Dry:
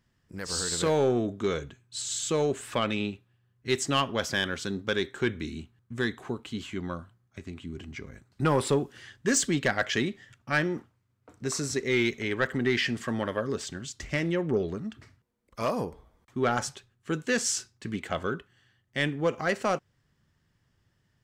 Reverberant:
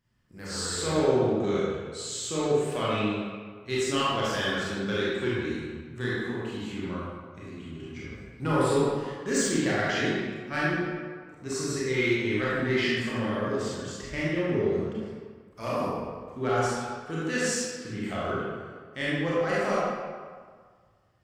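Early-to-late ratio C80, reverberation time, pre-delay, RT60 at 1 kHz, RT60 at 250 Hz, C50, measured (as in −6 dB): −1.0 dB, 1.7 s, 26 ms, 1.8 s, 1.7 s, −3.5 dB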